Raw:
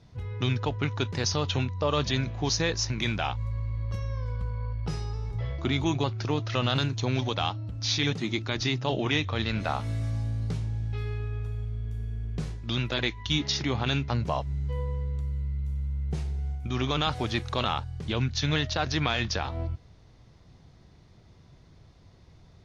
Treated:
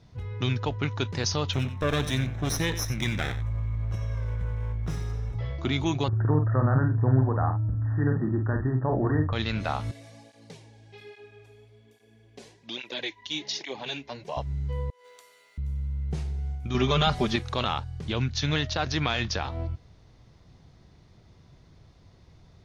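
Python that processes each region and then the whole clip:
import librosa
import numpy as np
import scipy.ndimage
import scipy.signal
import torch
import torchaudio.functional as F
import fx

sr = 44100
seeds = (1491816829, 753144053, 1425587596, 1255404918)

y = fx.chain(x, sr, fx.lower_of_two(delay_ms=0.53),
    fx.peak_eq(hz=4500.0, db=-12.0, octaves=0.24),
    fx.echo_single(ms=91, db=-12.5), at=(1.53, 5.35))
y = fx.chain(y, sr, fx.brickwall_lowpass(high_hz=1900.0),
    fx.low_shelf(hz=160.0, db=8.0),
    fx.doubler(ms=46.0, db=-6.0), at=(6.08, 9.33))
y = fx.chain(y, sr, fx.highpass(hz=370.0, slope=12),
    fx.peak_eq(hz=1300.0, db=-14.0, octaves=0.37),
    fx.flanger_cancel(hz=1.2, depth_ms=6.5), at=(9.91, 14.37))
y = fx.chain(y, sr, fx.highpass(hz=490.0, slope=24),
    fx.tilt_eq(slope=3.0),
    fx.over_compress(threshold_db=-53.0, ratio=-0.5), at=(14.9, 15.58))
y = fx.chain(y, sr, fx.low_shelf(hz=370.0, db=4.5),
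    fx.comb(ms=5.0, depth=0.91), at=(16.74, 17.36))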